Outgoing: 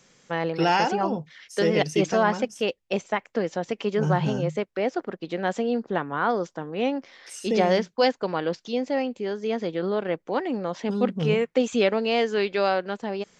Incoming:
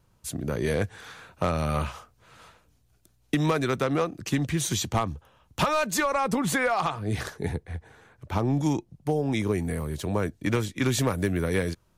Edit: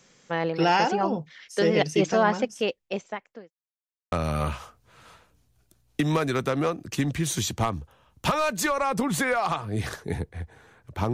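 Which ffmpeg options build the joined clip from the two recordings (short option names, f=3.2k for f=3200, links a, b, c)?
-filter_complex "[0:a]apad=whole_dur=11.13,atrim=end=11.13,asplit=2[a][b];[a]atrim=end=3.51,asetpts=PTS-STARTPTS,afade=t=out:st=2.59:d=0.92[c];[b]atrim=start=3.51:end=4.12,asetpts=PTS-STARTPTS,volume=0[d];[1:a]atrim=start=1.46:end=8.47,asetpts=PTS-STARTPTS,afade=t=in:d=0.004:c=hsin[e];[c][d][e]concat=n=3:v=0:a=1"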